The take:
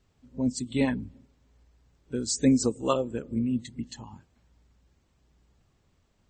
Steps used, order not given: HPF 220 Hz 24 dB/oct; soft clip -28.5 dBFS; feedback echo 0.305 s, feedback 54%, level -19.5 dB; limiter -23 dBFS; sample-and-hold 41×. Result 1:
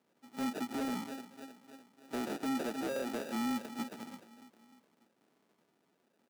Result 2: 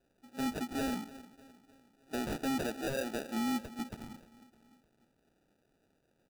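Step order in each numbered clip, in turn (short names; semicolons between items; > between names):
feedback echo > limiter > sample-and-hold > HPF > soft clip; HPF > limiter > soft clip > feedback echo > sample-and-hold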